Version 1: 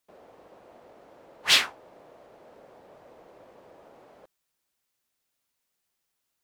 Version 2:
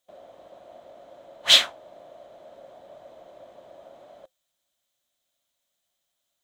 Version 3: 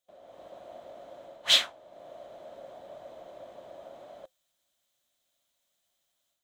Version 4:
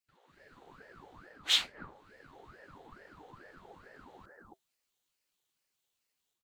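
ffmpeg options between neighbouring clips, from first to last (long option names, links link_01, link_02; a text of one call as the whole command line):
ffmpeg -i in.wav -af "superequalizer=7b=0.708:8b=2.82:13b=2.51:15b=1.58,volume=-1dB" out.wav
ffmpeg -i in.wav -af "dynaudnorm=framelen=210:gausssize=3:maxgain=8dB,volume=-7dB" out.wav
ffmpeg -i in.wav -filter_complex "[0:a]acrossover=split=750[link_01][link_02];[link_01]adelay=280[link_03];[link_03][link_02]amix=inputs=2:normalize=0,aeval=exprs='val(0)*sin(2*PI*650*n/s+650*0.8/2.3*sin(2*PI*2.3*n/s))':channel_layout=same,volume=-2.5dB" out.wav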